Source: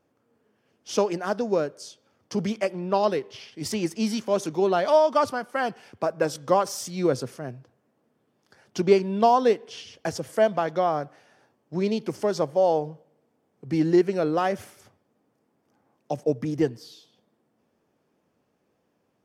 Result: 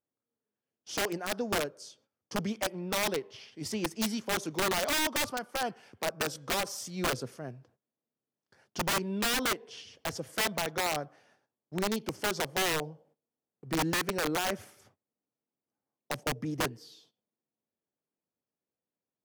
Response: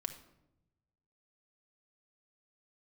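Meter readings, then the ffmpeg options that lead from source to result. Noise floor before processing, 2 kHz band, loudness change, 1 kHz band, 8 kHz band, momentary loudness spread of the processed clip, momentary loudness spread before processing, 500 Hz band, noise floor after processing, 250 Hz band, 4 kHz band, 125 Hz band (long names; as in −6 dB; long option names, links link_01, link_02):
−72 dBFS, +2.5 dB, −7.0 dB, −8.5 dB, +3.5 dB, 12 LU, 14 LU, −12.5 dB, below −85 dBFS, −8.5 dB, +4.0 dB, −7.0 dB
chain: -af "aeval=exprs='(mod(7.5*val(0)+1,2)-1)/7.5':channel_layout=same,agate=range=-18dB:threshold=-58dB:ratio=16:detection=peak,volume=-6dB"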